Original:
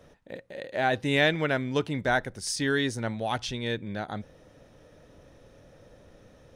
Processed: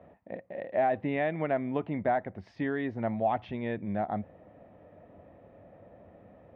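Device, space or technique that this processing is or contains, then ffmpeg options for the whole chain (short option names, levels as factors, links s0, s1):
bass amplifier: -af "acompressor=threshold=0.0501:ratio=4,highpass=84,equalizer=f=92:t=q:w=4:g=4,equalizer=f=130:t=q:w=4:g=-6,equalizer=f=200:t=q:w=4:g=4,equalizer=f=460:t=q:w=4:g=-3,equalizer=f=690:t=q:w=4:g=9,equalizer=f=1500:t=q:w=4:g=-9,lowpass=f=2100:w=0.5412,lowpass=f=2100:w=1.3066"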